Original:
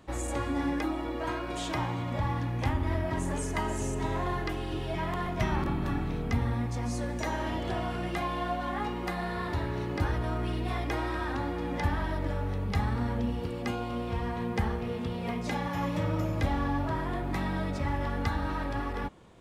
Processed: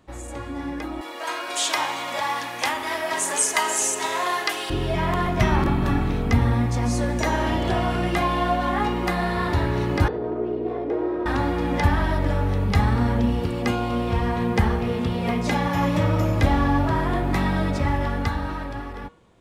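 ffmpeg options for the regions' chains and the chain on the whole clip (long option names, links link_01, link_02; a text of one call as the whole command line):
ffmpeg -i in.wav -filter_complex "[0:a]asettb=1/sr,asplit=3[link_01][link_02][link_03];[link_01]atrim=end=1.014[link_04];[link_02]atrim=start=1.01:end=4.7,asetpts=PTS-STARTPTS,afade=type=in:duration=0.004:curve=qsin,afade=type=out:start_time=3.686:duration=0.004:curve=qsin,highpass=580,equalizer=frequency=9500:width_type=o:width=2.9:gain=11[link_05];[link_03]atrim=start=4.696[link_06];[link_04][link_05]acrossfade=duration=0.004:curve1=hsin:curve2=qsin[link_07];[link_07][link_06]acrossfade=duration=0.004:curve1=qsin:curve2=hsin,asettb=1/sr,asplit=3[link_08][link_09][link_10];[link_08]atrim=end=10.084[link_11];[link_09]atrim=start=10.08:end=11.26,asetpts=PTS-STARTPTS,afade=type=in:duration=0.004:curve=qsin,afade=type=out:start_time=1.176:duration=0.004:curve=qsin,aeval=exprs='0.112*sin(PI/2*2*val(0)/0.112)':channel_layout=same,bandpass=frequency=420:width_type=q:width=4.3[link_12];[link_10]atrim=start=11.256[link_13];[link_11][link_12]acrossfade=duration=0.004:curve1=hsin:curve2=qsin[link_14];[link_14][link_13]acrossfade=duration=0.004:curve1=qsin:curve2=hsin,bandreject=frequency=159.8:width_type=h:width=4,bandreject=frequency=319.6:width_type=h:width=4,bandreject=frequency=479.4:width_type=h:width=4,bandreject=frequency=639.2:width_type=h:width=4,bandreject=frequency=799:width_type=h:width=4,bandreject=frequency=958.8:width_type=h:width=4,bandreject=frequency=1118.6:width_type=h:width=4,bandreject=frequency=1278.4:width_type=h:width=4,bandreject=frequency=1438.2:width_type=h:width=4,bandreject=frequency=1598:width_type=h:width=4,bandreject=frequency=1757.8:width_type=h:width=4,bandreject=frequency=1917.6:width_type=h:width=4,bandreject=frequency=2077.4:width_type=h:width=4,bandreject=frequency=2237.2:width_type=h:width=4,bandreject=frequency=2397:width_type=h:width=4,bandreject=frequency=2556.8:width_type=h:width=4,bandreject=frequency=2716.6:width_type=h:width=4,bandreject=frequency=2876.4:width_type=h:width=4,bandreject=frequency=3036.2:width_type=h:width=4,bandreject=frequency=3196:width_type=h:width=4,bandreject=frequency=3355.8:width_type=h:width=4,bandreject=frequency=3515.6:width_type=h:width=4,bandreject=frequency=3675.4:width_type=h:width=4,bandreject=frequency=3835.2:width_type=h:width=4,bandreject=frequency=3995:width_type=h:width=4,bandreject=frequency=4154.8:width_type=h:width=4,bandreject=frequency=4314.6:width_type=h:width=4,bandreject=frequency=4474.4:width_type=h:width=4,bandreject=frequency=4634.2:width_type=h:width=4,dynaudnorm=framelen=130:gausssize=21:maxgain=12dB,volume=-2dB" out.wav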